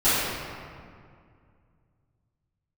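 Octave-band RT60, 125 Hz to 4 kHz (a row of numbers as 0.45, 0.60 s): 3.5, 2.7, 2.2, 2.1, 1.8, 1.3 s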